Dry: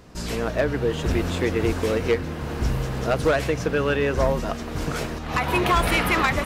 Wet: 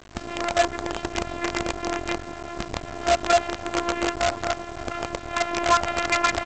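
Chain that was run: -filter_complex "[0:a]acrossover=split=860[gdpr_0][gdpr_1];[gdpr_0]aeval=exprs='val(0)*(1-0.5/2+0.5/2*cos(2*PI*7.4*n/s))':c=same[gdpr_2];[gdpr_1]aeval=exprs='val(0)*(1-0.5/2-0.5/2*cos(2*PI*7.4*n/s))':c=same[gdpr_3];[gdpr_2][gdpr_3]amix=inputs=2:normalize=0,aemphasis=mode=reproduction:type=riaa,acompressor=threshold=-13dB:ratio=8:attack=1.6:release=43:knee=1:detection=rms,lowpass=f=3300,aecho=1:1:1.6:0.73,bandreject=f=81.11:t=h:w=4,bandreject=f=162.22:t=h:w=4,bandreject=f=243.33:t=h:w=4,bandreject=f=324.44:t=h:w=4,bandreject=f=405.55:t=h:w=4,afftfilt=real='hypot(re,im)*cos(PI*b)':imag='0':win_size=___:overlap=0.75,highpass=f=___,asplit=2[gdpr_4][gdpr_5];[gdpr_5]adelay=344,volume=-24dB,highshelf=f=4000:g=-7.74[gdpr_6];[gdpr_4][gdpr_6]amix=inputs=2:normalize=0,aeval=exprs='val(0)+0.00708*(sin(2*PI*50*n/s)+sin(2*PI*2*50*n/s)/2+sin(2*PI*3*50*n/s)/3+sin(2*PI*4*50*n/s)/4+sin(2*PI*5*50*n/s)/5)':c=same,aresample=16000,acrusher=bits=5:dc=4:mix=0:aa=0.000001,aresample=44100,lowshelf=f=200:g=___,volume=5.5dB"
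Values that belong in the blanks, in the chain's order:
512, 57, -11.5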